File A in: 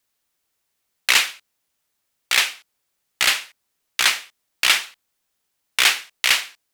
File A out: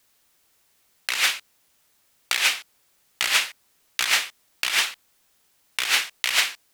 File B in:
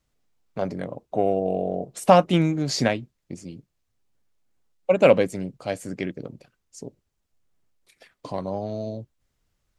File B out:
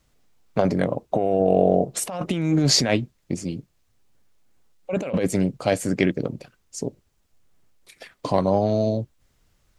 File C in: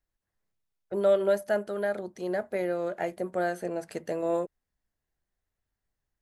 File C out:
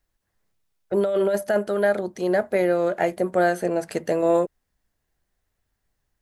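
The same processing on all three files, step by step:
negative-ratio compressor -26 dBFS, ratio -1; match loudness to -23 LUFS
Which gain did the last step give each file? +3.5, +5.5, +8.0 dB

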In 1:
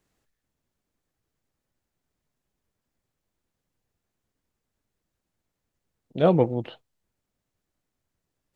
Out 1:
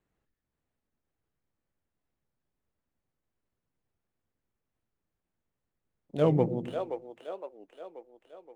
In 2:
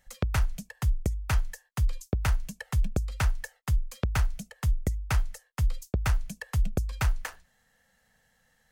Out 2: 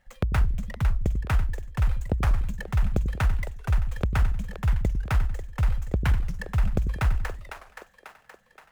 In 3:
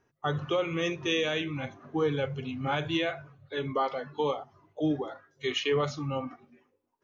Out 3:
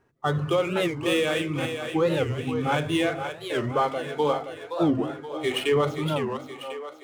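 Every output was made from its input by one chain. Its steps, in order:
median filter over 9 samples; split-band echo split 370 Hz, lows 93 ms, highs 0.523 s, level -7.5 dB; record warp 45 rpm, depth 250 cents; normalise peaks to -12 dBFS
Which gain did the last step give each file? -5.5, +2.5, +5.0 dB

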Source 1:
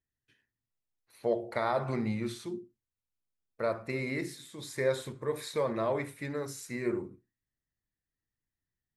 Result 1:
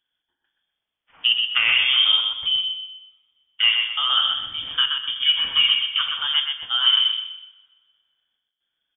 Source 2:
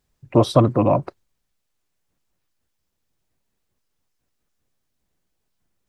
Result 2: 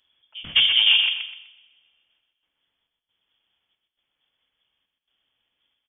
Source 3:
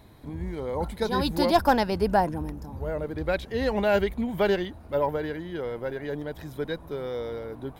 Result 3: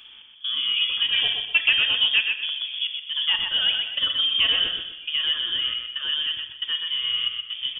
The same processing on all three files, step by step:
tracing distortion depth 0.036 ms; HPF 44 Hz; bell 360 Hz +3 dB 1.7 oct; in parallel at +2.5 dB: compressor, threshold -29 dBFS; on the sum: step gate "x.xxxx.xxx.xx.xx" 68 bpm -24 dB; soft clip -7 dBFS; on a send: feedback echo 0.125 s, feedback 33%, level -5 dB; on the sum: inverted band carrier 3400 Hz; two-slope reverb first 0.69 s, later 1.9 s, from -18 dB, DRR 8 dB; normalise peaks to -6 dBFS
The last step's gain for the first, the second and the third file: +4.5, -4.0, -3.0 dB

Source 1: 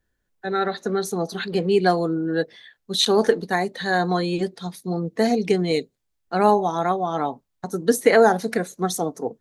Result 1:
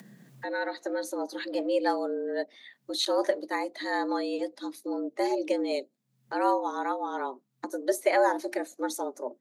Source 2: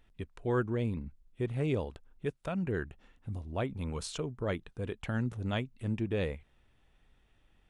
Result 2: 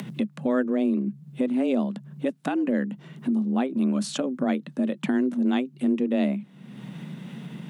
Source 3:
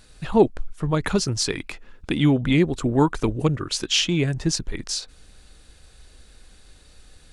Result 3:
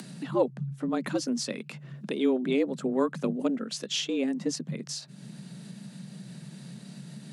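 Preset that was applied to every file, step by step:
bell 82 Hz +12.5 dB 1.3 oct; frequency shift +130 Hz; upward compressor, threshold -22 dBFS; normalise peaks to -12 dBFS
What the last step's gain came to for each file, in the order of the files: -9.0, +2.5, -10.0 dB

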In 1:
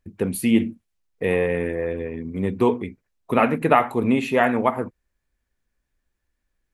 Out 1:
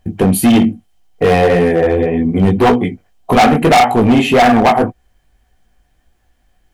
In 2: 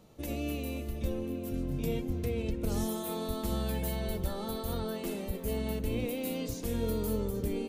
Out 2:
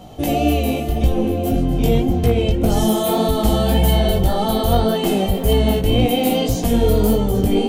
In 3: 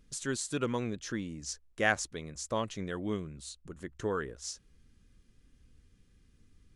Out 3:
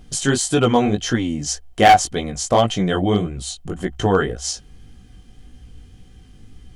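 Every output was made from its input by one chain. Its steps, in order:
low shelf 370 Hz +4 dB; in parallel at +1 dB: compressor 10:1, threshold -28 dBFS; on the sum: chorus 1.8 Hz, delay 16 ms, depth 5.3 ms; small resonant body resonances 740/3100 Hz, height 17 dB, ringing for 55 ms; overloaded stage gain 17.5 dB; normalise peaks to -6 dBFS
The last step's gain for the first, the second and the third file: +11.5, +11.5, +11.5 dB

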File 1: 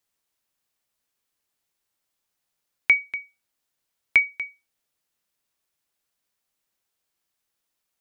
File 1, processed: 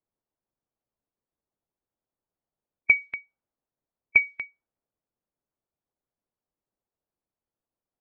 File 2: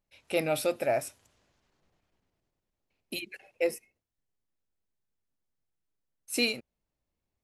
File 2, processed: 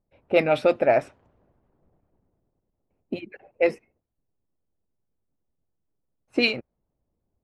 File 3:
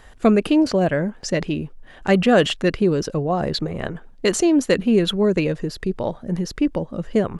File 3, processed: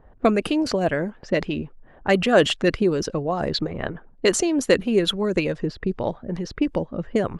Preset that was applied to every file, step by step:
low-pass opened by the level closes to 710 Hz, open at -16 dBFS; harmonic-percussive split harmonic -7 dB; match loudness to -23 LUFS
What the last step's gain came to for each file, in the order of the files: +2.5, +12.0, +1.0 dB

